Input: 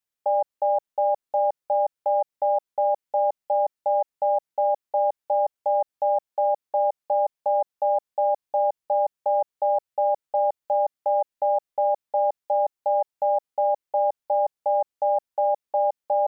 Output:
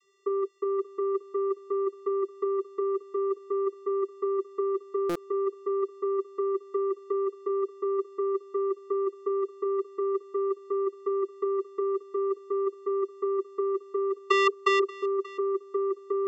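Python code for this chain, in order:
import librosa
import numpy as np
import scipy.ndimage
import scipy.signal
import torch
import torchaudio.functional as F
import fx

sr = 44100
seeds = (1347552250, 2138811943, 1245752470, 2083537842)

y = fx.lower_of_two(x, sr, delay_ms=3.2, at=(14.18, 14.79))
y = fx.over_compress(y, sr, threshold_db=-28.0, ratio=-1.0)
y = fx.vocoder(y, sr, bands=32, carrier='square', carrier_hz=393.0)
y = y + 10.0 ** (-20.0 / 20.0) * np.pad(y, (int(582 * sr / 1000.0), 0))[:len(y)]
y = fx.buffer_glitch(y, sr, at_s=(5.09,), block=256, repeats=10)
y = F.gain(torch.from_numpy(y), 2.5).numpy()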